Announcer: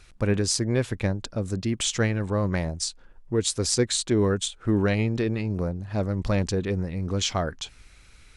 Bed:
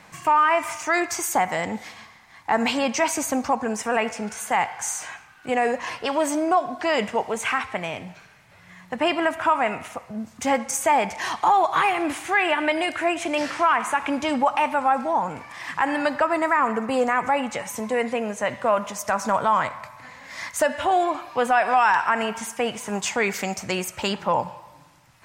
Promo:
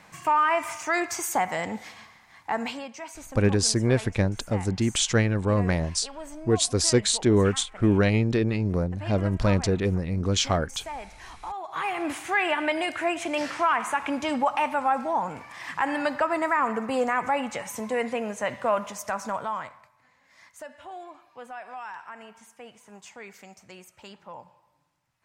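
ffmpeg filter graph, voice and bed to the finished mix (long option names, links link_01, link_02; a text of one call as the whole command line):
ffmpeg -i stem1.wav -i stem2.wav -filter_complex "[0:a]adelay=3150,volume=2dB[link_01];[1:a]volume=10.5dB,afade=type=out:start_time=2.33:duration=0.56:silence=0.199526,afade=type=in:start_time=11.64:duration=0.47:silence=0.199526,afade=type=out:start_time=18.74:duration=1.17:silence=0.141254[link_02];[link_01][link_02]amix=inputs=2:normalize=0" out.wav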